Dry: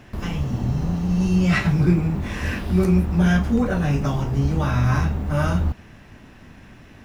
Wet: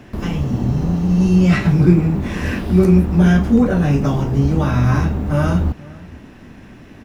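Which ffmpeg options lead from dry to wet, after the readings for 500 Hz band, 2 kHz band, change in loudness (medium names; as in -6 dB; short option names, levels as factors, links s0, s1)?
+6.5 dB, +1.5 dB, +5.5 dB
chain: -filter_complex "[0:a]equalizer=f=300:t=o:w=2:g=6,acrossover=split=460[s0][s1];[s1]acompressor=threshold=0.0794:ratio=3[s2];[s0][s2]amix=inputs=2:normalize=0,asplit=2[s3][s4];[s4]adelay=472.3,volume=0.0794,highshelf=f=4000:g=-10.6[s5];[s3][s5]amix=inputs=2:normalize=0,volume=1.26"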